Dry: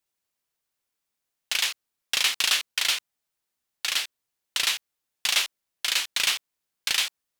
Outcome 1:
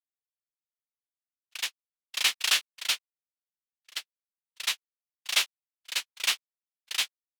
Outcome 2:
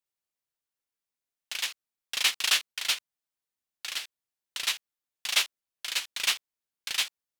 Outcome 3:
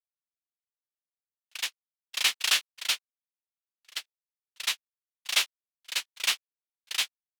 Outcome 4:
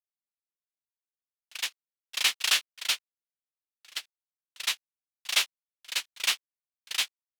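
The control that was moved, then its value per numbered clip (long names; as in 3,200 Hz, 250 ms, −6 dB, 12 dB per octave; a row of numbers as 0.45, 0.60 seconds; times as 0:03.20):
noise gate, range: −58, −9, −41, −28 decibels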